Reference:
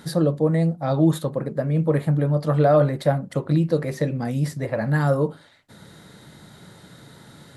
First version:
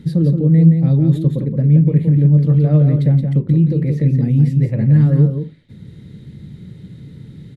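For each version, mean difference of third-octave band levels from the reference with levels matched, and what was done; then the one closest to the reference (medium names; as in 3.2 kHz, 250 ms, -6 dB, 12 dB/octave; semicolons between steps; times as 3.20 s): 9.0 dB: high-order bell 990 Hz -14 dB; peak limiter -15.5 dBFS, peak gain reduction 7.5 dB; tone controls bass +14 dB, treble -14 dB; delay 172 ms -6 dB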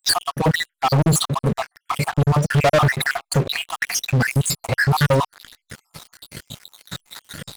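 13.0 dB: random holes in the spectrogram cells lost 70%; in parallel at -5.5 dB: hysteresis with a dead band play -41.5 dBFS; on the sum: FFT filter 120 Hz 0 dB, 340 Hz -7 dB, 2.9 kHz +10 dB, 6.9 kHz +9 dB; waveshaping leveller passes 5; trim -4.5 dB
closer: first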